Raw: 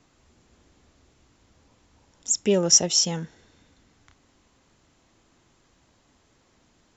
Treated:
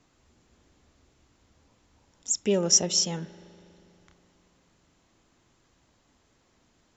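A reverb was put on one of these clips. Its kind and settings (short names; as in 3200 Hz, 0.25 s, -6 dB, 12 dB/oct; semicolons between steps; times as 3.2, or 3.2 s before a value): spring tank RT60 3 s, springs 40 ms, chirp 55 ms, DRR 16 dB; gain -3.5 dB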